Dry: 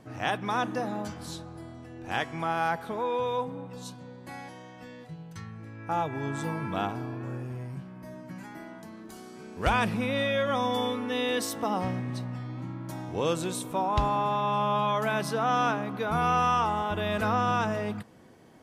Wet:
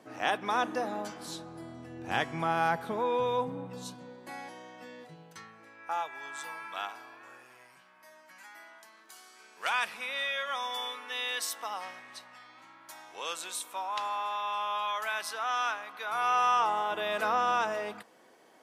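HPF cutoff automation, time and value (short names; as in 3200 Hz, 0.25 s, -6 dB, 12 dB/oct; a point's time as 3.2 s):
1.15 s 310 Hz
1.96 s 100 Hz
3.62 s 100 Hz
4.2 s 290 Hz
5.17 s 290 Hz
6.14 s 1200 Hz
15.98 s 1200 Hz
16.68 s 490 Hz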